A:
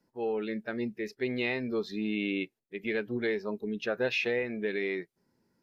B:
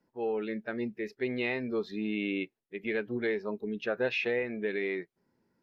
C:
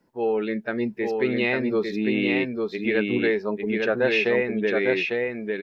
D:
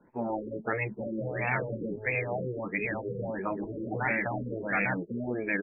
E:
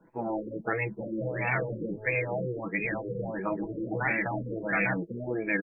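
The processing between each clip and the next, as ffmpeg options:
-af "bass=f=250:g=-2,treble=f=4000:g=-9"
-af "aecho=1:1:851:0.668,volume=2.51"
-af "highshelf=f=3500:t=q:w=3:g=-8,afftfilt=real='re*lt(hypot(re,im),0.178)':imag='im*lt(hypot(re,im),0.178)':win_size=1024:overlap=0.75,afftfilt=real='re*lt(b*sr/1024,530*pow(2700/530,0.5+0.5*sin(2*PI*1.5*pts/sr)))':imag='im*lt(b*sr/1024,530*pow(2700/530,0.5+0.5*sin(2*PI*1.5*pts/sr)))':win_size=1024:overlap=0.75,volume=1.68"
-af "aecho=1:1:6.1:0.51"

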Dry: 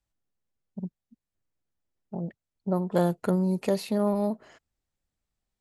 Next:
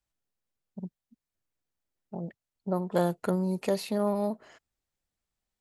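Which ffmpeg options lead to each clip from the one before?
-af "lowshelf=f=340:g=-5"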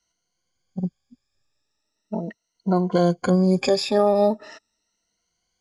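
-af "afftfilt=real='re*pow(10,19/40*sin(2*PI*(1.9*log(max(b,1)*sr/1024/100)/log(2)-(0.39)*(pts-256)/sr)))':imag='im*pow(10,19/40*sin(2*PI*(1.9*log(max(b,1)*sr/1024/100)/log(2)-(0.39)*(pts-256)/sr)))':win_size=1024:overlap=0.75,alimiter=limit=0.15:level=0:latency=1:release=265,lowpass=f=5700:t=q:w=2.8,volume=2.37"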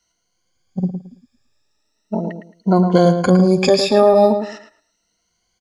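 -filter_complex "[0:a]asplit=2[s0][s1];[s1]adelay=110,lowpass=f=2900:p=1,volume=0.422,asplit=2[s2][s3];[s3]adelay=110,lowpass=f=2900:p=1,volume=0.24,asplit=2[s4][s5];[s5]adelay=110,lowpass=f=2900:p=1,volume=0.24[s6];[s0][s2][s4][s6]amix=inputs=4:normalize=0,volume=2"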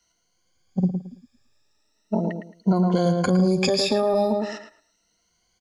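-filter_complex "[0:a]alimiter=limit=0.376:level=0:latency=1:release=150,acrossover=split=160|3000[s0][s1][s2];[s1]acompressor=threshold=0.0794:ratio=2[s3];[s0][s3][s2]amix=inputs=3:normalize=0"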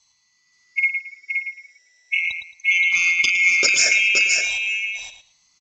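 -af "afftfilt=real='real(if(lt(b,920),b+92*(1-2*mod(floor(b/92),2)),b),0)':imag='imag(if(lt(b,920),b+92*(1-2*mod(floor(b/92),2)),b),0)':win_size=2048:overlap=0.75,lowpass=f=5600:t=q:w=16,aecho=1:1:521:0.562"

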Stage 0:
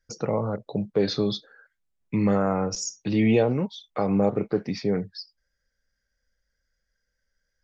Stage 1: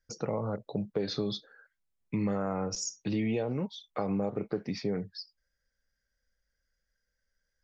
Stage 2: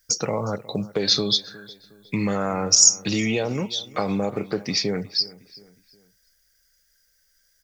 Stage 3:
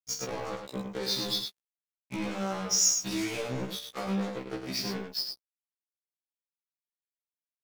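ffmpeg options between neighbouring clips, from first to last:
-af "acompressor=threshold=0.0708:ratio=6,volume=0.631"
-filter_complex "[0:a]crystalizer=i=7.5:c=0,asplit=2[s0][s1];[s1]adelay=362,lowpass=f=3700:p=1,volume=0.106,asplit=2[s2][s3];[s3]adelay=362,lowpass=f=3700:p=1,volume=0.41,asplit=2[s4][s5];[s5]adelay=362,lowpass=f=3700:p=1,volume=0.41[s6];[s0][s2][s4][s6]amix=inputs=4:normalize=0,volume=1.88"
-af "acrusher=bits=3:mix=0:aa=0.5,aecho=1:1:46.65|102:0.355|0.501,afftfilt=real='re*1.73*eq(mod(b,3),0)':imag='im*1.73*eq(mod(b,3),0)':win_size=2048:overlap=0.75,volume=0.376"

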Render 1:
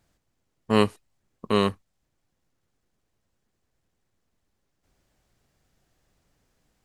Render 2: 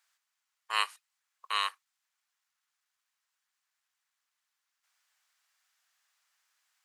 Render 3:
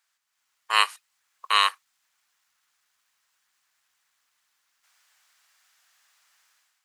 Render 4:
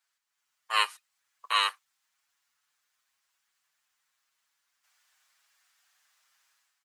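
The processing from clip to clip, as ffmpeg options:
-af "highpass=f=1100:w=0.5412,highpass=f=1100:w=1.3066"
-af "dynaudnorm=f=140:g=5:m=3.55"
-filter_complex "[0:a]asplit=2[s0][s1];[s1]adelay=6.8,afreqshift=0.92[s2];[s0][s2]amix=inputs=2:normalize=1,volume=0.794"

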